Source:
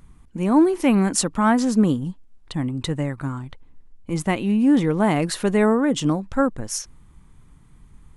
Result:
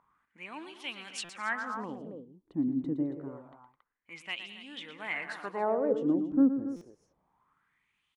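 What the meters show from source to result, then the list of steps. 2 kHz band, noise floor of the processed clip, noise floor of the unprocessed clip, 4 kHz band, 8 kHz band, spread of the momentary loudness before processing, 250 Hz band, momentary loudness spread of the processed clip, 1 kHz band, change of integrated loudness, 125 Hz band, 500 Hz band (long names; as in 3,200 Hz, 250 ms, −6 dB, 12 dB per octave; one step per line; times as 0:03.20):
−7.0 dB, −80 dBFS, −51 dBFS, −10.0 dB, below −20 dB, 13 LU, −12.5 dB, 18 LU, −13.0 dB, −12.0 dB, −21.5 dB, −11.5 dB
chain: multi-tap delay 115/211/276 ms −10/−18/−12.5 dB
LFO wah 0.27 Hz 280–3,300 Hz, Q 4.4
buffer that repeats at 0:01.24/0:06.76, samples 256, times 8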